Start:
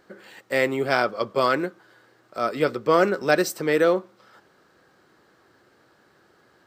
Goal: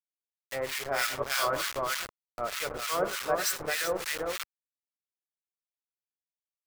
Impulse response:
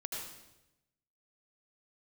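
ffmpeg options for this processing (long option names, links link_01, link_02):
-filter_complex "[0:a]highshelf=frequency=5600:gain=8,bandreject=frequency=50:width_type=h:width=6,bandreject=frequency=100:width_type=h:width=6,bandreject=frequency=150:width_type=h:width=6,bandreject=frequency=200:width_type=h:width=6,bandreject=frequency=250:width_type=h:width=6,bandreject=frequency=300:width_type=h:width=6,bandreject=frequency=350:width_type=h:width=6,bandreject=frequency=400:width_type=h:width=6,bandreject=frequency=450:width_type=h:width=6,bandreject=frequency=500:width_type=h:width=6,aecho=1:1:393:0.631,asplit=2[link_01][link_02];[1:a]atrim=start_sample=2205,lowpass=8000[link_03];[link_02][link_03]afir=irnorm=-1:irlink=0,volume=-5.5dB[link_04];[link_01][link_04]amix=inputs=2:normalize=0,acrusher=bits=3:mix=0:aa=0.000001,equalizer=frequency=260:width_type=o:width=2.1:gain=-12,dynaudnorm=framelen=200:gausssize=11:maxgain=11.5dB,acrossover=split=1200[link_05][link_06];[link_05]aeval=exprs='val(0)*(1-1/2+1/2*cos(2*PI*3.3*n/s))':channel_layout=same[link_07];[link_06]aeval=exprs='val(0)*(1-1/2-1/2*cos(2*PI*3.3*n/s))':channel_layout=same[link_08];[link_07][link_08]amix=inputs=2:normalize=0,volume=-6dB"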